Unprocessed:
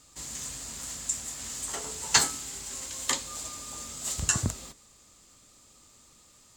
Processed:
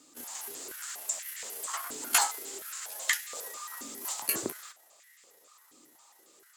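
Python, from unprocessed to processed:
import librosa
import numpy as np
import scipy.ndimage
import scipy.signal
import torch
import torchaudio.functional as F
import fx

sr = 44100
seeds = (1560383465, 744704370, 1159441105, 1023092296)

y = fx.pitch_trill(x, sr, semitones=8.0, every_ms=136)
y = fx.filter_held_highpass(y, sr, hz=4.2, low_hz=290.0, high_hz=1900.0)
y = y * librosa.db_to_amplitude(-2.5)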